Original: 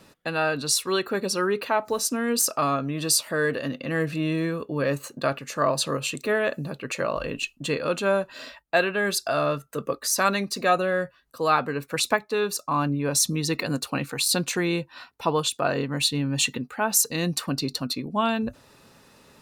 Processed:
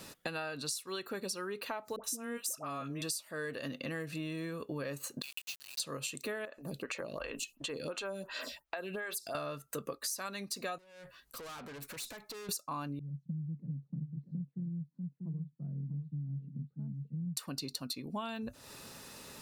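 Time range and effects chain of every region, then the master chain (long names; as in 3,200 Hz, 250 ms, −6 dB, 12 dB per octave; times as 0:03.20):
0:01.96–0:03.02: parametric band 4,500 Hz −11.5 dB 0.25 octaves + all-pass dispersion highs, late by 77 ms, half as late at 810 Hz
0:05.22–0:05.80: Chebyshev high-pass filter 2,600 Hz, order 5 + high-frequency loss of the air 220 metres + log-companded quantiser 4 bits
0:06.45–0:09.35: downward compressor 4 to 1, threshold −30 dBFS + phaser with staggered stages 2.8 Hz
0:10.78–0:12.49: downward compressor 5 to 1, threshold −36 dBFS + tube saturation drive 46 dB, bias 0.35
0:12.99–0:17.37: flat-topped band-pass 160 Hz, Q 3.1 + single-tap delay 641 ms −8.5 dB
whole clip: high-shelf EQ 4,000 Hz +9.5 dB; downward compressor 12 to 1, threshold −37 dBFS; level +1 dB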